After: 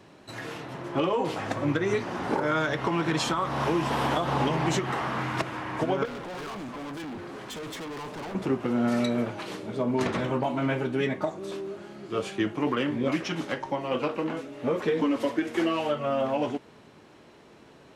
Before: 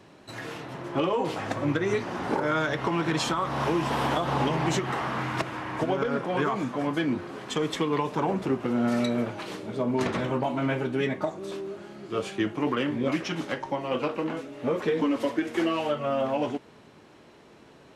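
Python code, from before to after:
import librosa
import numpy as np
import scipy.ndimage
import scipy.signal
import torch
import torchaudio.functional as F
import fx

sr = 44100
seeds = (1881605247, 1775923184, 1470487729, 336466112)

y = fx.overload_stage(x, sr, gain_db=35.5, at=(6.05, 8.35))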